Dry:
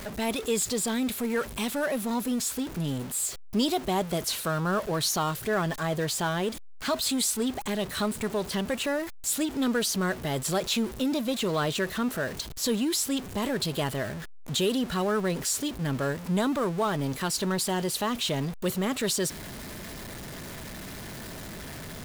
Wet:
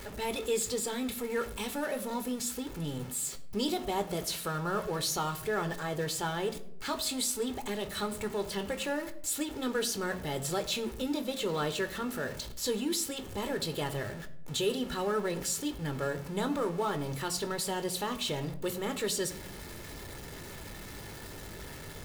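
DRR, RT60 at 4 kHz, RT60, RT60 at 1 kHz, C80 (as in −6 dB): 8.0 dB, 0.45 s, 0.80 s, 0.65 s, 17.0 dB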